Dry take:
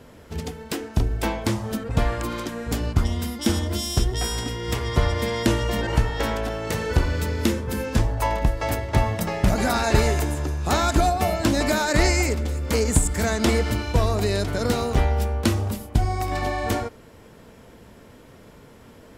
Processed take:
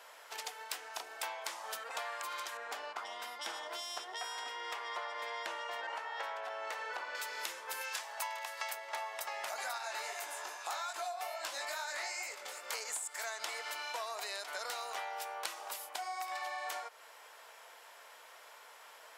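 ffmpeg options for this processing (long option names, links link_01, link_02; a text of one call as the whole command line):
ffmpeg -i in.wav -filter_complex "[0:a]asettb=1/sr,asplit=3[link_01][link_02][link_03];[link_01]atrim=end=2.574[link_04];[link_02]atrim=start=2.57:end=7.15,asetpts=PTS-STARTPTS,afade=type=in:duration=0.004:curve=qsin,afade=type=out:start_time=4.576:duration=0.004:curve=qsin,lowpass=frequency=1600:poles=1[link_05];[link_03]atrim=start=7.146[link_06];[link_04][link_05]acrossfade=duration=0.004:curve1=hsin:curve2=qsin[link_07];[link_07][link_06]acrossfade=duration=0.004:curve1=qsin:curve2=hsin,asettb=1/sr,asplit=3[link_08][link_09][link_10];[link_08]atrim=end=7.814[link_11];[link_09]atrim=start=7.81:end=8.73,asetpts=PTS-STARTPTS,afade=type=in:duration=0.004:curve=qsin,afade=type=out:start_time=0.916:duration=0.004:curve=qsin,tiltshelf=frequency=970:gain=-6[link_12];[link_10]atrim=start=8.726[link_13];[link_11][link_12]acrossfade=duration=0.004:curve1=hsin:curve2=qsin[link_14];[link_14][link_13]acrossfade=duration=0.004:curve1=qsin:curve2=hsin,asettb=1/sr,asplit=3[link_15][link_16][link_17];[link_15]atrim=end=9.784[link_18];[link_16]atrim=start=9.78:end=12.73,asetpts=PTS-STARTPTS,afade=type=in:duration=0.004:curve=qsin,afade=type=out:start_time=2.946:duration=0.004:curve=qsin,flanger=delay=18.5:depth=4.3:speed=2.4[link_19];[link_17]atrim=start=12.726[link_20];[link_18][link_19]acrossfade=duration=0.004:curve1=hsin:curve2=qsin[link_21];[link_21][link_20]acrossfade=duration=0.004:curve1=qsin:curve2=hsin,highpass=frequency=740:width=0.5412,highpass=frequency=740:width=1.3066,acompressor=threshold=-38dB:ratio=6" out.wav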